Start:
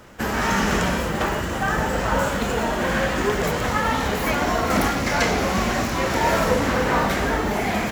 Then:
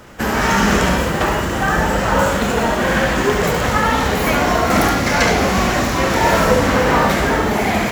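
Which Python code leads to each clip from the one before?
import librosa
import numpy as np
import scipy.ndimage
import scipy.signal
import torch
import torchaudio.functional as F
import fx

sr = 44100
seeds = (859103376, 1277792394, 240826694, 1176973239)

y = x + 10.0 ** (-6.5 / 20.0) * np.pad(x, (int(71 * sr / 1000.0), 0))[:len(x)]
y = y * librosa.db_to_amplitude(5.0)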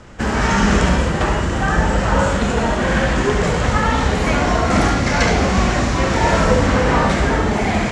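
y = scipy.signal.sosfilt(scipy.signal.butter(6, 9000.0, 'lowpass', fs=sr, output='sos'), x)
y = fx.low_shelf(y, sr, hz=140.0, db=9.0)
y = y * librosa.db_to_amplitude(-2.5)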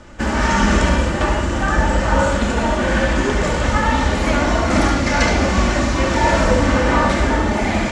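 y = x + 0.45 * np.pad(x, (int(3.4 * sr / 1000.0), 0))[:len(x)]
y = y * librosa.db_to_amplitude(-1.0)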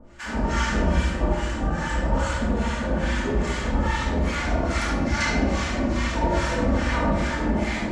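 y = fx.harmonic_tremolo(x, sr, hz=2.4, depth_pct=100, crossover_hz=950.0)
y = fx.room_shoebox(y, sr, seeds[0], volume_m3=610.0, walls='mixed', distance_m=1.7)
y = y * librosa.db_to_amplitude(-7.5)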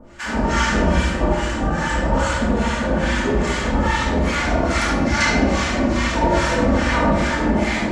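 y = fx.low_shelf(x, sr, hz=110.0, db=-5.5)
y = y * librosa.db_to_amplitude(6.5)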